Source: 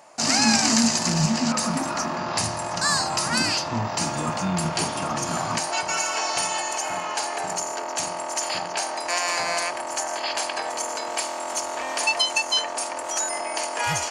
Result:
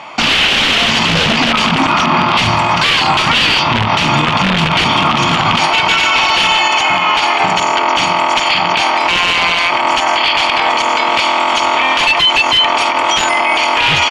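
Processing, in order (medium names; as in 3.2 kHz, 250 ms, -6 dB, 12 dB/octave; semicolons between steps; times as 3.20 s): high-pass 71 Hz 12 dB/octave; comb 0.9 ms, depth 48%; integer overflow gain 16.5 dB; resonant low-pass 3 kHz, resonance Q 3.6; loudness maximiser +20 dB; trim -2 dB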